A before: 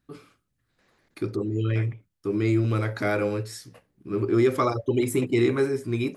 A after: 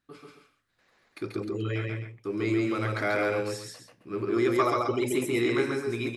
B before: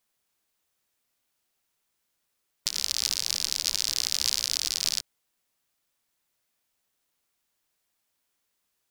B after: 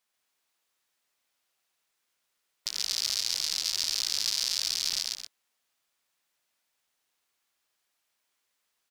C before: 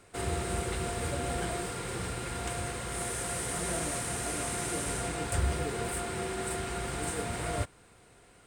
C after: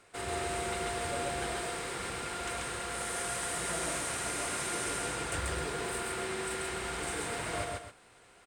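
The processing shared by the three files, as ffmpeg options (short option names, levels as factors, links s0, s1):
-filter_complex "[0:a]aecho=1:1:137|262.4:0.794|0.282,asplit=2[s0][s1];[s1]highpass=f=720:p=1,volume=2.82,asoftclip=type=tanh:threshold=0.631[s2];[s0][s2]amix=inputs=2:normalize=0,lowpass=f=6200:p=1,volume=0.501,volume=0.562"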